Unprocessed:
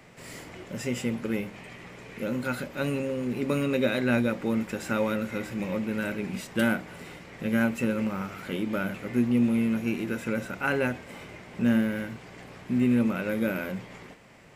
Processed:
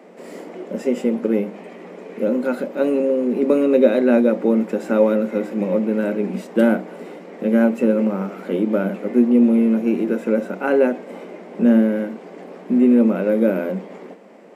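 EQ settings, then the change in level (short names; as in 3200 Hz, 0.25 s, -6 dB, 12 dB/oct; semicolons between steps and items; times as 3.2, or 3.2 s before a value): elliptic high-pass 190 Hz, stop band 40 dB; low shelf 380 Hz +9.5 dB; bell 520 Hz +13.5 dB 2.3 oct; -3.5 dB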